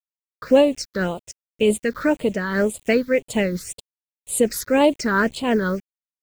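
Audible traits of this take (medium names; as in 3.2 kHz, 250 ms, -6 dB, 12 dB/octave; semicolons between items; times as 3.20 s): a quantiser's noise floor 8-bit, dither none; phasing stages 6, 1.9 Hz, lowest notch 700–1600 Hz; random flutter of the level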